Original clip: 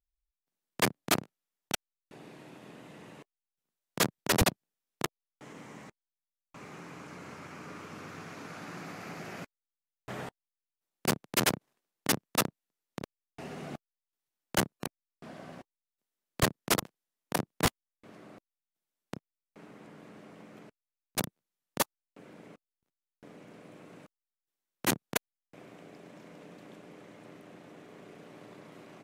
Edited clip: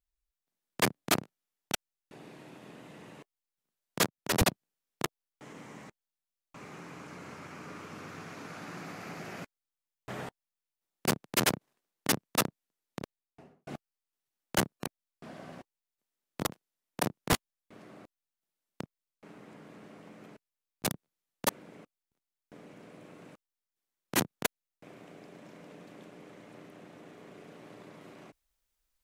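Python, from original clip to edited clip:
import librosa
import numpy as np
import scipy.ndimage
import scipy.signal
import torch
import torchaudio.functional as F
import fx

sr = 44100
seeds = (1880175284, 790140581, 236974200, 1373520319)

y = fx.studio_fade_out(x, sr, start_s=12.99, length_s=0.68)
y = fx.edit(y, sr, fx.fade_in_from(start_s=4.06, length_s=0.38, floor_db=-19.5),
    fx.cut(start_s=16.41, length_s=0.33),
    fx.cut(start_s=21.82, length_s=0.38), tone=tone)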